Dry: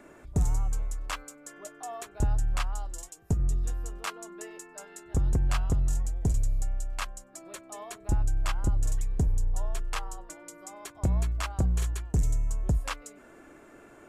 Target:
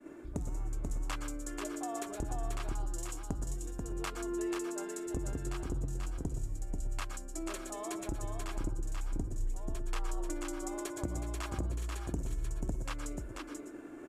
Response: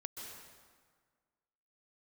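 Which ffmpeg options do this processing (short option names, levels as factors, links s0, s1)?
-filter_complex "[0:a]agate=range=0.0224:threshold=0.00447:ratio=3:detection=peak,equalizer=f=310:t=o:w=0.63:g=13.5,acompressor=threshold=0.0158:ratio=6,aecho=1:1:487:0.631[s0];[1:a]atrim=start_sample=2205,afade=t=out:st=0.19:d=0.01,atrim=end_sample=8820,asetrate=48510,aresample=44100[s1];[s0][s1]afir=irnorm=-1:irlink=0,volume=2"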